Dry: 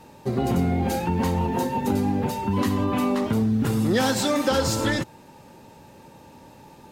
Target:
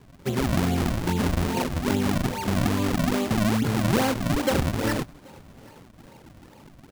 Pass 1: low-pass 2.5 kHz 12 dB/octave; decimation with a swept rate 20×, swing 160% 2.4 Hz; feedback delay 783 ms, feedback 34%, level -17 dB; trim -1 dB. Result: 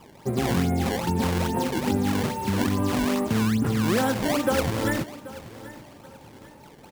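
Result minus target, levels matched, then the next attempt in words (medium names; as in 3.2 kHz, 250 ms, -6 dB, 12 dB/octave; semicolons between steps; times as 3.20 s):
echo-to-direct +10 dB; decimation with a swept rate: distortion -10 dB
low-pass 2.5 kHz 12 dB/octave; decimation with a swept rate 60×, swing 160% 2.4 Hz; feedback delay 783 ms, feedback 34%, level -27 dB; trim -1 dB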